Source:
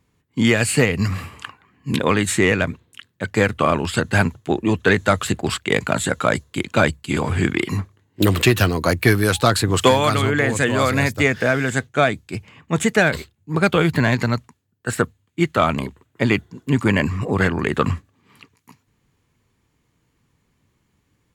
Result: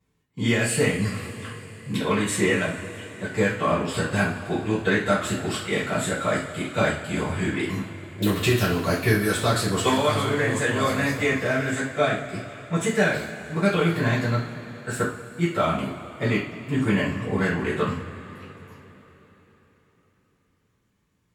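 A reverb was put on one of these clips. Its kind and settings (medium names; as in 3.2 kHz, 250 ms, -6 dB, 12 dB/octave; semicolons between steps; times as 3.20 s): two-slope reverb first 0.38 s, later 4.2 s, from -20 dB, DRR -9 dB; trim -14.5 dB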